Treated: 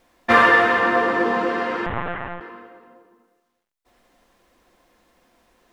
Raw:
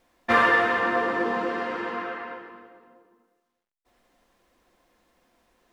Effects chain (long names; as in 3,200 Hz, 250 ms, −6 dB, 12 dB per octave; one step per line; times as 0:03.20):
0:01.86–0:02.41: linear-prediction vocoder at 8 kHz pitch kept
level +5.5 dB